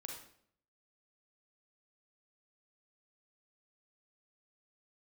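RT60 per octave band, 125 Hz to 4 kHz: 0.80 s, 0.70 s, 0.70 s, 0.60 s, 0.55 s, 0.50 s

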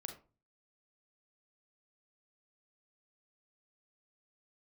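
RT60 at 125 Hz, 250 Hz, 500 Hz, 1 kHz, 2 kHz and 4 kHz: 0.60 s, 0.45 s, 0.35 s, 0.35 s, 0.25 s, 0.20 s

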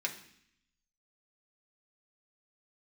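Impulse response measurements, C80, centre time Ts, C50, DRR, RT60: 14.0 dB, 13 ms, 11.0 dB, -0.5 dB, 0.65 s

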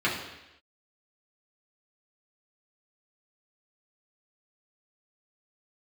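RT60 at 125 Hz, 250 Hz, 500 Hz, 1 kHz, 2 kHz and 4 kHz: 0.85 s, 0.90 s, 0.90 s, 0.90 s, 1.0 s, 1.0 s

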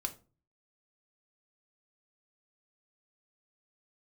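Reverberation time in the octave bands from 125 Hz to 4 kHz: 0.65 s, 0.45 s, 0.40 s, 0.30 s, 0.25 s, 0.25 s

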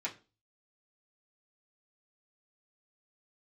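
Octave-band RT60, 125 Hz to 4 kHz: 0.55 s, 0.40 s, 0.35 s, 0.30 s, 0.30 s, 0.30 s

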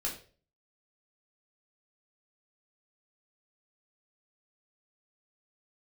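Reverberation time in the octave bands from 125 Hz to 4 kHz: 0.55 s, 0.45 s, 0.50 s, 0.35 s, 0.35 s, 0.35 s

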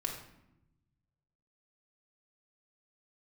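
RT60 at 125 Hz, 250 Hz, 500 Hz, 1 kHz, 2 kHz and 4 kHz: 1.9 s, 1.4 s, 0.95 s, 0.80 s, 0.75 s, 0.55 s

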